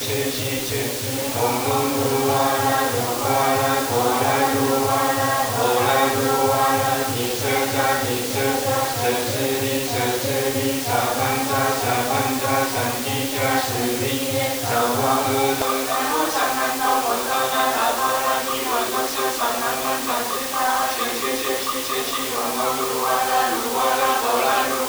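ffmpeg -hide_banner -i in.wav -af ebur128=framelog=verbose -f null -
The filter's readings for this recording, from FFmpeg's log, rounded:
Integrated loudness:
  I:         -20.3 LUFS
  Threshold: -30.3 LUFS
Loudness range:
  LRA:         2.5 LU
  Threshold: -40.3 LUFS
  LRA low:   -21.4 LUFS
  LRA high:  -18.9 LUFS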